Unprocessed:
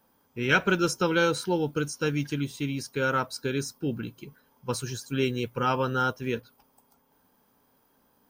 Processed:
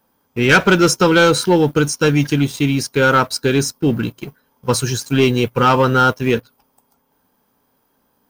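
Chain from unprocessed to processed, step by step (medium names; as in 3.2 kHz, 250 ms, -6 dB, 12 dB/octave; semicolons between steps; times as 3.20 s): waveshaping leveller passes 2; trim +6.5 dB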